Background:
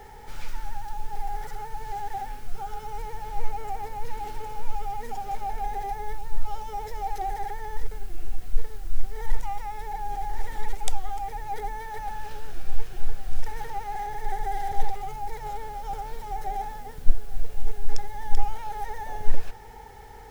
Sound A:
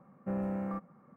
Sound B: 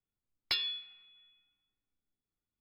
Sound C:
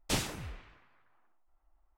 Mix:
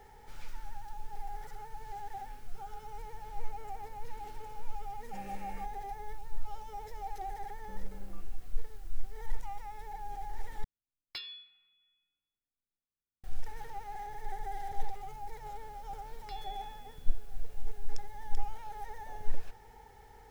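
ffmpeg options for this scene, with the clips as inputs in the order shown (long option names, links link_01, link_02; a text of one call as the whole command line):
ffmpeg -i bed.wav -i cue0.wav -i cue1.wav -filter_complex "[1:a]asplit=2[link_01][link_02];[2:a]asplit=2[link_03][link_04];[0:a]volume=-10dB[link_05];[link_01]aexciter=amount=13.4:drive=7.8:freq=2000[link_06];[link_02]acompressor=threshold=-39dB:ratio=6:attack=3.2:release=140:knee=1:detection=peak[link_07];[link_04]acompressor=threshold=-49dB:ratio=6:attack=3.2:release=140:knee=1:detection=peak[link_08];[link_05]asplit=2[link_09][link_10];[link_09]atrim=end=10.644[link_11];[link_03]atrim=end=2.6,asetpts=PTS-STARTPTS,volume=-10dB[link_12];[link_10]atrim=start=13.236[link_13];[link_06]atrim=end=1.16,asetpts=PTS-STARTPTS,volume=-15dB,afade=type=in:duration=0.004:curve=hsin,afade=type=out:start_time=1.156:duration=0.004:curve=hsin,adelay=4860[link_14];[link_07]atrim=end=1.16,asetpts=PTS-STARTPTS,volume=-11dB,afade=type=in:duration=0.004:curve=hsin,afade=type=out:start_time=1.156:duration=0.004:curve=hsin,adelay=7420[link_15];[link_08]atrim=end=2.6,asetpts=PTS-STARTPTS,volume=-3dB,afade=type=in:duration=0.004:curve=hsin,afade=type=out:start_time=2.596:duration=0.004:curve=hsin,adelay=15780[link_16];[link_11][link_12]acrossfade=duration=0.004:curve1=hsin:curve2=hsin[link_17];[link_17][link_13]acrossfade=duration=0.004:curve1=hsin:curve2=hsin[link_18];[link_18][link_14][link_15][link_16]amix=inputs=4:normalize=0" out.wav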